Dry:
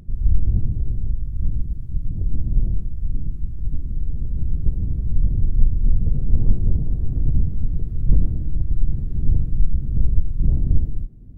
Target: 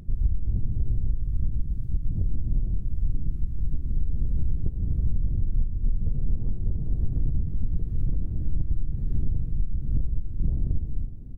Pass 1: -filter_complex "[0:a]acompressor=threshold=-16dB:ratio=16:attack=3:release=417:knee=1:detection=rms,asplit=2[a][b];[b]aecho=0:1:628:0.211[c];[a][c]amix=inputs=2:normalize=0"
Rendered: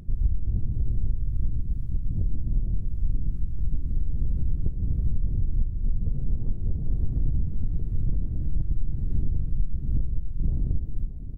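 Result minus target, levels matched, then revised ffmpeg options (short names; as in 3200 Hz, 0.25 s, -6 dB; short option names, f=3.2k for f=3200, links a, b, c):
echo 0.255 s late
-filter_complex "[0:a]acompressor=threshold=-16dB:ratio=16:attack=3:release=417:knee=1:detection=rms,asplit=2[a][b];[b]aecho=0:1:373:0.211[c];[a][c]amix=inputs=2:normalize=0"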